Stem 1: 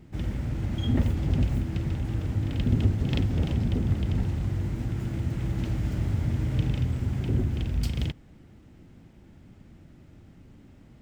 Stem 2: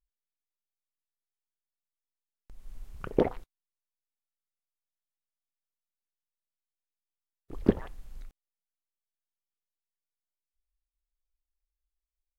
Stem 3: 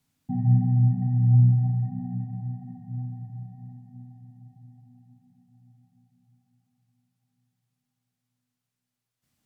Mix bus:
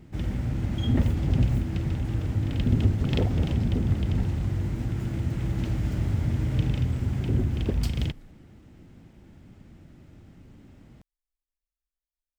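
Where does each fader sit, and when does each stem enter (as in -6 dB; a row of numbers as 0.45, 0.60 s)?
+1.0, -6.5, -14.0 dB; 0.00, 0.00, 0.00 s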